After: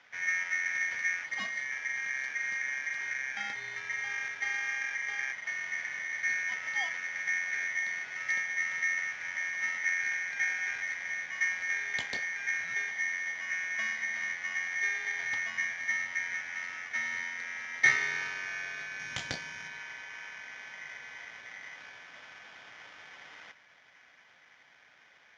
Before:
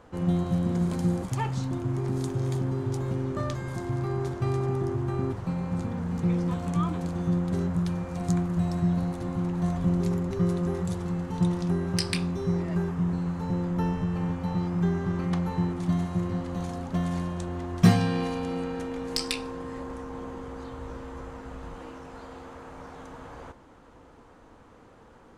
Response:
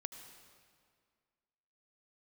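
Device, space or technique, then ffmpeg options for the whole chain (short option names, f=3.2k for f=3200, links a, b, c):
ring modulator pedal into a guitar cabinet: -filter_complex "[0:a]aeval=exprs='val(0)*sgn(sin(2*PI*2000*n/s))':c=same,highpass=100,equalizer=f=360:t=q:w=4:g=-6,equalizer=f=1.1k:t=q:w=4:g=-6,equalizer=f=2.7k:t=q:w=4:g=-9,lowpass=f=4.5k:w=0.5412,lowpass=f=4.5k:w=1.3066,asettb=1/sr,asplit=3[a][b][c];[a]atrim=end=18.994[d];[b]atrim=start=18.99:end=19.68,asetpts=PTS-STARTPTS,afade=t=in:d=0.004:c=qsin,afade=t=out:st=0.686:d=0.004:c=qsin,bass=f=250:g=11,treble=f=4k:g=6[e];[c]atrim=start=19.676[f];[d][e]acrossfade=d=0.004:c1=hsin:c2=qsin[g];[g][f]acrossfade=d=0.004:c1=qsin:c2=hsin,volume=-4dB"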